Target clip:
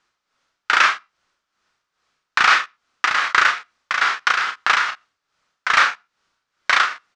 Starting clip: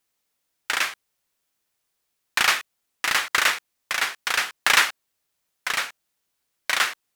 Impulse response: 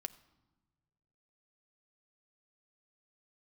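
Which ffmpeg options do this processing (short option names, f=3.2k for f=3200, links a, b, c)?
-filter_complex "[0:a]lowpass=f=6.1k:w=0.5412,lowpass=f=6.1k:w=1.3066,equalizer=f=1.3k:w=1.7:g=11,acompressor=threshold=-15dB:ratio=5,tremolo=f=2.4:d=0.69,aecho=1:1:32|46:0.473|0.251,asplit=2[a][b];[1:a]atrim=start_sample=2205,atrim=end_sample=6615[c];[b][c]afir=irnorm=-1:irlink=0,volume=-9.5dB[d];[a][d]amix=inputs=2:normalize=0,alimiter=level_in=7.5dB:limit=-1dB:release=50:level=0:latency=1,volume=-1dB"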